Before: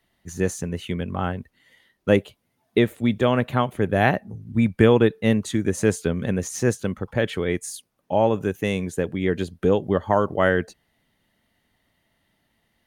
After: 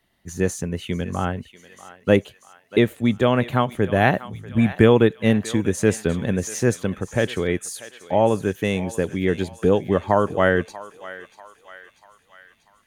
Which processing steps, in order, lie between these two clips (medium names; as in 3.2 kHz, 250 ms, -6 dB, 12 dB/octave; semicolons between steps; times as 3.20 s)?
thinning echo 640 ms, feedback 62%, high-pass 930 Hz, level -13.5 dB; trim +1.5 dB